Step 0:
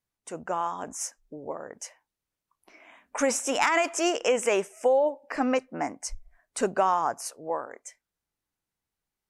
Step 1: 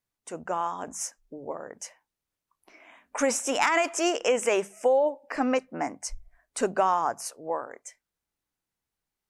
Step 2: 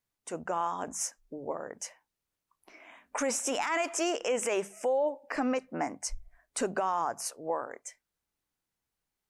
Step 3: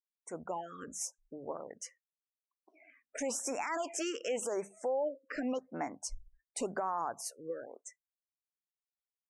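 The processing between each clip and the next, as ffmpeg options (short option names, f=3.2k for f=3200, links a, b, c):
-af "bandreject=f=50:t=h:w=6,bandreject=f=100:t=h:w=6,bandreject=f=150:t=h:w=6,bandreject=f=200:t=h:w=6"
-af "alimiter=limit=-21dB:level=0:latency=1:release=88"
-af "afftdn=nr=29:nf=-51,afftfilt=real='re*(1-between(b*sr/1024,760*pow(3900/760,0.5+0.5*sin(2*PI*0.9*pts/sr))/1.41,760*pow(3900/760,0.5+0.5*sin(2*PI*0.9*pts/sr))*1.41))':imag='im*(1-between(b*sr/1024,760*pow(3900/760,0.5+0.5*sin(2*PI*0.9*pts/sr))/1.41,760*pow(3900/760,0.5+0.5*sin(2*PI*0.9*pts/sr))*1.41))':win_size=1024:overlap=0.75,volume=-5dB"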